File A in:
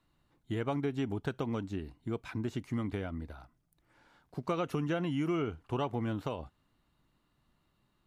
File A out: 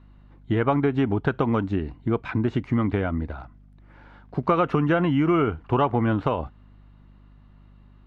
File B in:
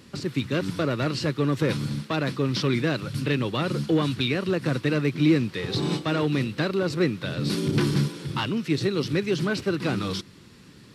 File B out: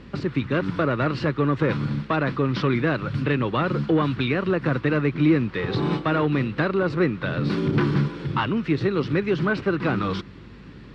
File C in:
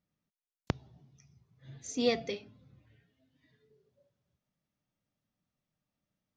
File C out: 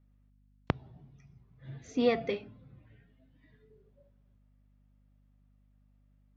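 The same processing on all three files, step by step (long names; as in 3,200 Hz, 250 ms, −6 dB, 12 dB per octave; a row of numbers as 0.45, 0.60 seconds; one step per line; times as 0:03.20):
low-pass filter 2,500 Hz 12 dB per octave
dynamic equaliser 1,200 Hz, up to +5 dB, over −45 dBFS, Q 1.1
in parallel at +2.5 dB: downward compressor, threshold −32 dBFS
on the sum: mains hum 50 Hz, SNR 26 dB
normalise the peak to −9 dBFS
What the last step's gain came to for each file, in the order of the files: +5.5, −1.0, −2.0 decibels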